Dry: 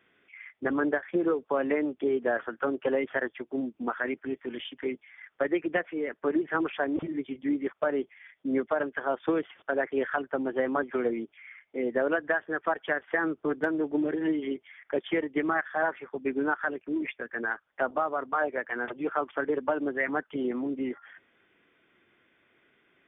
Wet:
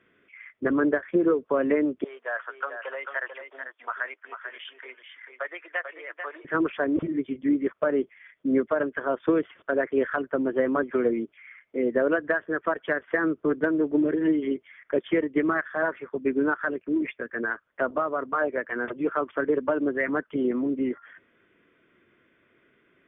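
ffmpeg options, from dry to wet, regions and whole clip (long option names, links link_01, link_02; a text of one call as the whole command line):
ffmpeg -i in.wav -filter_complex "[0:a]asettb=1/sr,asplit=3[link_01][link_02][link_03];[link_01]atrim=end=2.044[link_04];[link_02]atrim=start=2.04:end=6.45,asetpts=PTS-STARTPTS,afade=type=in:duration=0.004:curve=qsin,afade=type=out:start_time=4.406:duration=0.004:curve=qsin,highpass=frequency=750:width=0.5412,highpass=frequency=750:width=1.3066,aecho=1:1:442:0.422,atrim=end_sample=194481[link_05];[link_03]atrim=start=6.446[link_06];[link_04][link_05]acrossfade=duration=0.004:curve1=hsin:curve2=qsin[link_07];[link_07][link_06]acrossfade=duration=0.004:curve1=qsin:curve2=hsin,lowpass=frequency=1500:poles=1,acontrast=33,equalizer=frequency=800:width=4.8:gain=-11.5" out.wav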